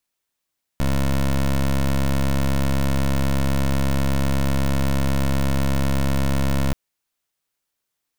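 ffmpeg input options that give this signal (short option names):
-f lavfi -i "aevalsrc='0.112*(2*lt(mod(68.1*t,1),0.17)-1)':d=5.93:s=44100"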